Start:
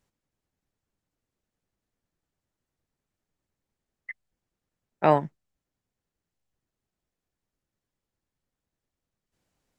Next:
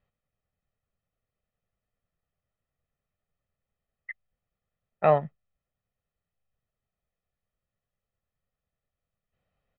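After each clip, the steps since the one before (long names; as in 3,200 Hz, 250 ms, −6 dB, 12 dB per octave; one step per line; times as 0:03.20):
low-pass filter 3,200 Hz 24 dB per octave
comb filter 1.6 ms, depth 66%
level −3 dB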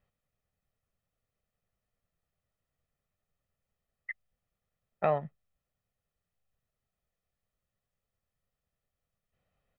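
downward compressor 2 to 1, threshold −29 dBFS, peak gain reduction 8 dB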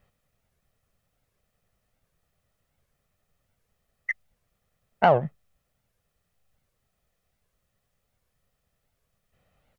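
in parallel at −8 dB: soft clipping −28.5 dBFS, distortion −7 dB
on the sum: wow of a warped record 78 rpm, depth 250 cents
level +8 dB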